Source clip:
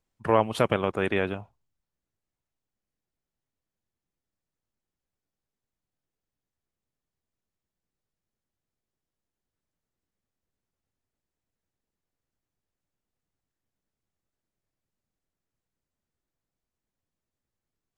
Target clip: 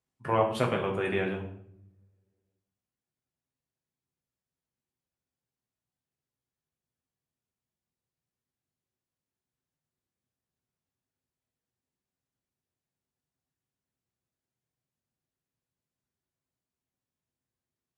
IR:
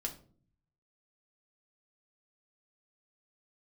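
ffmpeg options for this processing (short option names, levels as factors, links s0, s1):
-filter_complex "[0:a]highpass=72[s0];[1:a]atrim=start_sample=2205,asetrate=23814,aresample=44100[s1];[s0][s1]afir=irnorm=-1:irlink=0,volume=0.422"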